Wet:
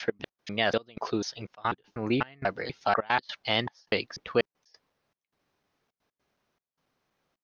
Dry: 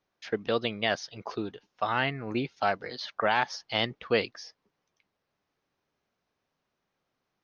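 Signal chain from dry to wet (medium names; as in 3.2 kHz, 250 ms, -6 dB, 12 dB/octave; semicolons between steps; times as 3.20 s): slices played last to first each 245 ms, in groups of 2; in parallel at -1 dB: peak limiter -20.5 dBFS, peak gain reduction 9.5 dB; on the sum: trance gate "x.x.xxxx..xxxxx" 155 bpm -24 dB; trim -1.5 dB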